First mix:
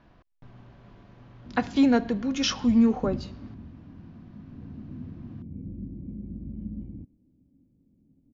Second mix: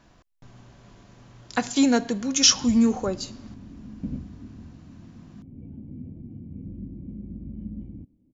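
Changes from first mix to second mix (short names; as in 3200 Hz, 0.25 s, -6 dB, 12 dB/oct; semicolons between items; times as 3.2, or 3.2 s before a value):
background: entry +1.00 s; master: remove air absorption 260 m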